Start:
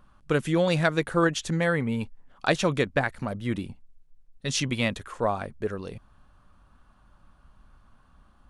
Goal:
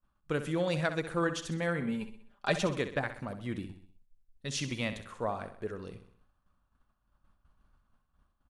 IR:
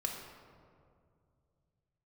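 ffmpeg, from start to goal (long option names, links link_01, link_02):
-filter_complex "[0:a]agate=range=-33dB:threshold=-48dB:ratio=3:detection=peak,asettb=1/sr,asplit=3[link_01][link_02][link_03];[link_01]atrim=end=1.814[link_04];[link_02]atrim=start=1.81:end=2.67,asetpts=PTS-STARTPTS,afade=type=in:duration=0.004:curve=qsin,afade=type=out:start_time=0.856:duration=0.004:curve=qsin,aecho=1:1:5:0.71,atrim=end_sample=37926[link_05];[link_03]atrim=start=2.666[link_06];[link_04][link_05]acrossfade=duration=0.004:curve1=hsin:curve2=qsin[link_07];[link_07][link_06]acrossfade=duration=0.004:curve1=qsin:curve2=hsin,aecho=1:1:64|128|192|256|320:0.282|0.138|0.0677|0.0332|0.0162,volume=-8dB"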